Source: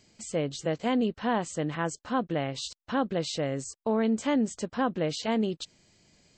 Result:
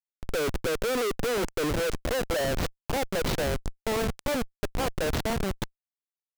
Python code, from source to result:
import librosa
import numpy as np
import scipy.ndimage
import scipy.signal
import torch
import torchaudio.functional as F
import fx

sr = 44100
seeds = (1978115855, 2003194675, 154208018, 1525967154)

y = fx.low_shelf_res(x, sr, hz=760.0, db=11.0, q=1.5)
y = fx.filter_sweep_highpass(y, sr, from_hz=410.0, to_hz=1100.0, start_s=1.56, end_s=3.47, q=2.3)
y = fx.schmitt(y, sr, flips_db=-29.5)
y = y * librosa.db_to_amplitude(-7.0)